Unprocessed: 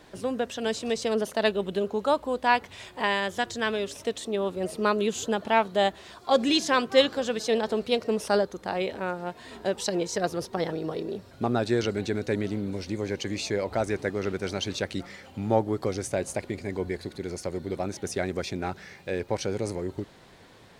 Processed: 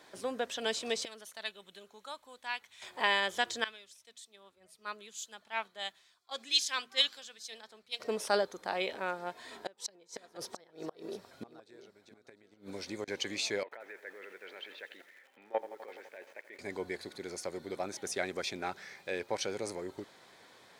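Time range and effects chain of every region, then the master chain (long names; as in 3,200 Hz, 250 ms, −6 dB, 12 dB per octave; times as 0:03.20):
0:01.05–0:02.82: guitar amp tone stack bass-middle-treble 5-5-5 + notch filter 4,900 Hz, Q 11
0:03.64–0:08.00: guitar amp tone stack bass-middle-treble 5-5-5 + mains-hum notches 60/120/180/240 Hz + multiband upward and downward expander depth 100%
0:09.45–0:13.08: gate with flip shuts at −19 dBFS, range −26 dB + single-tap delay 703 ms −15 dB
0:13.63–0:16.59: output level in coarse steps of 20 dB + loudspeaker in its box 460–3,000 Hz, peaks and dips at 460 Hz +4 dB, 720 Hz −5 dB, 1,200 Hz −4 dB, 1,800 Hz +8 dB, 2,700 Hz +4 dB + feedback echo at a low word length 84 ms, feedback 80%, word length 9 bits, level −13.5 dB
whole clip: high-pass filter 670 Hz 6 dB per octave; notch filter 2,800 Hz, Q 12; dynamic equaliser 2,900 Hz, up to +5 dB, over −46 dBFS, Q 2; level −2 dB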